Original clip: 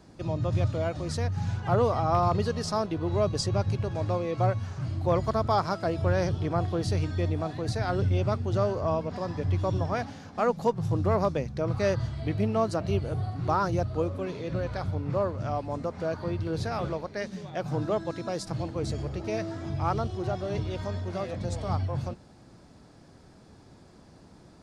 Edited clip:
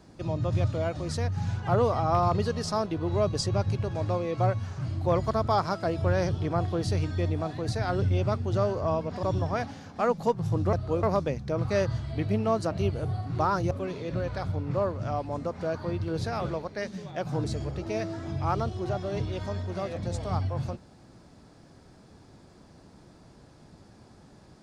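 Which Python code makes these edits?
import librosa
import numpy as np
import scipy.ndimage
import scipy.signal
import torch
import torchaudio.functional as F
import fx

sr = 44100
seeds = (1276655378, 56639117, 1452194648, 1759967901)

y = fx.edit(x, sr, fx.cut(start_s=9.23, length_s=0.39),
    fx.move(start_s=13.8, length_s=0.3, to_s=11.12),
    fx.cut(start_s=17.83, length_s=0.99), tone=tone)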